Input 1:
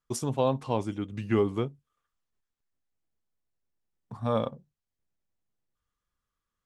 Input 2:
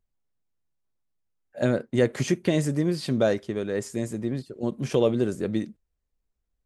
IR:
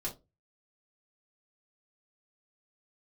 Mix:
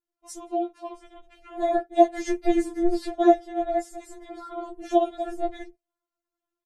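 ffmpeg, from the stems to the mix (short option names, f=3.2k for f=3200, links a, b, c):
-filter_complex "[0:a]acompressor=threshold=-27dB:ratio=6,adynamicequalizer=threshold=0.00447:dfrequency=1700:dqfactor=0.7:tfrequency=1700:tqfactor=0.7:attack=5:release=100:ratio=0.375:range=3:mode=boostabove:tftype=highshelf,adelay=150,volume=-6.5dB[a];[1:a]bandreject=f=2.5k:w=16,volume=-1.5dB,asplit=2[b][c];[c]apad=whole_len=300038[d];[a][d]sidechaincompress=threshold=-28dB:ratio=8:attack=16:release=390[e];[e][b]amix=inputs=2:normalize=0,equalizer=f=450:w=0.48:g=10.5,aeval=exprs='val(0)*sin(2*PI*180*n/s)':c=same,afftfilt=real='re*4*eq(mod(b,16),0)':imag='im*4*eq(mod(b,16),0)':win_size=2048:overlap=0.75"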